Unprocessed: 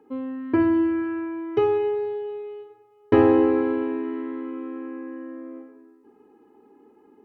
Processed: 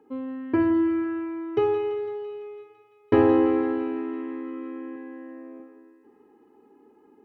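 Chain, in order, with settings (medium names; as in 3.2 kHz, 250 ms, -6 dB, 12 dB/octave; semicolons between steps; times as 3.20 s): 4.94–5.60 s: doubling 14 ms -7 dB; thinning echo 168 ms, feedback 72%, high-pass 630 Hz, level -11 dB; trim -2 dB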